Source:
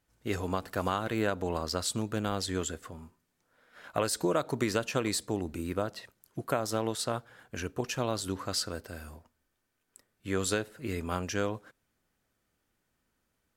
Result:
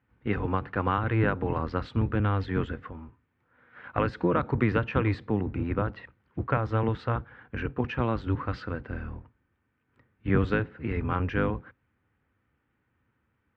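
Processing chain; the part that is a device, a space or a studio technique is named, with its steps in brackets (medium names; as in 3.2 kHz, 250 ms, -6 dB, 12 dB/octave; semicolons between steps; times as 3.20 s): 8.89–10.51 s: bass shelf 320 Hz +5 dB; sub-octave bass pedal (octave divider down 1 oct, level +2 dB; cabinet simulation 68–2400 Hz, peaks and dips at 170 Hz -5 dB, 380 Hz -4 dB, 640 Hz -10 dB); trim +5.5 dB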